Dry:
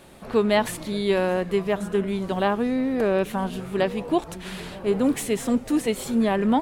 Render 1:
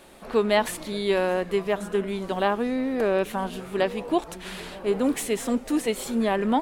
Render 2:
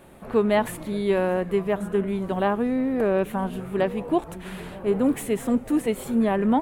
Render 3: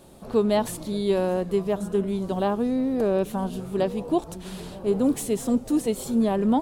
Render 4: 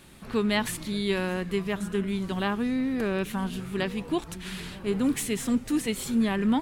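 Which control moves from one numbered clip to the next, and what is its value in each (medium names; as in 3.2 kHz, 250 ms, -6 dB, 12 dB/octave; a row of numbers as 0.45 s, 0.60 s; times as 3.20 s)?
peaking EQ, frequency: 110 Hz, 5 kHz, 2 kHz, 610 Hz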